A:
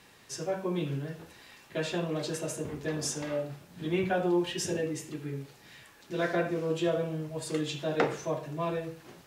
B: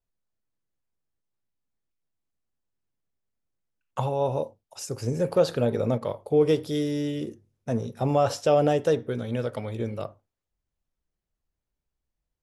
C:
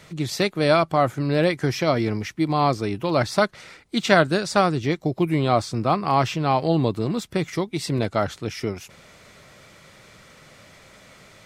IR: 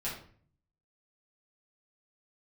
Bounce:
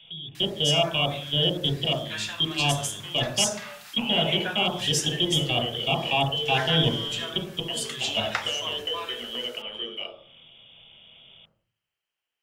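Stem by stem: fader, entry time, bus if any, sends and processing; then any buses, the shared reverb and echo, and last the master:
+1.0 dB, 0.35 s, no bus, no send, high-pass filter 920 Hz 24 dB per octave; high-shelf EQ 2,100 Hz +8.5 dB
−0.5 dB, 0.00 s, bus A, send −8.5 dB, high-pass filter 310 Hz 24 dB per octave; downward compressor, threshold −28 dBFS, peak gain reduction 12.5 dB
+1.5 dB, 0.00 s, bus A, send −9 dB, low-pass filter 1,000 Hz 24 dB per octave; output level in coarse steps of 21 dB
bus A: 0.0 dB, voice inversion scrambler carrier 3,500 Hz; brickwall limiter −16.5 dBFS, peak gain reduction 9 dB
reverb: on, RT60 0.50 s, pre-delay 5 ms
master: one half of a high-frequency compander encoder only

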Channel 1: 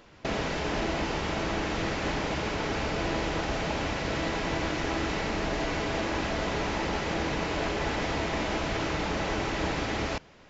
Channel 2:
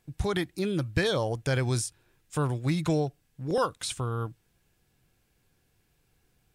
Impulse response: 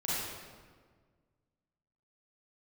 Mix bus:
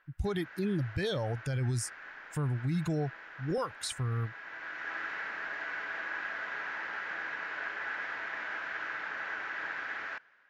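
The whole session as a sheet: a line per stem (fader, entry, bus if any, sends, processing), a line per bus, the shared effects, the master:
0.0 dB, 0.00 s, no send, resonant band-pass 1,600 Hz, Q 5.7; automatic gain control gain up to 5 dB; automatic ducking −10 dB, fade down 0.20 s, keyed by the second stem
−1.0 dB, 0.00 s, no send, spectral dynamics exaggerated over time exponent 1.5; low-shelf EQ 180 Hz +8.5 dB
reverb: not used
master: brickwall limiter −24.5 dBFS, peak gain reduction 12 dB

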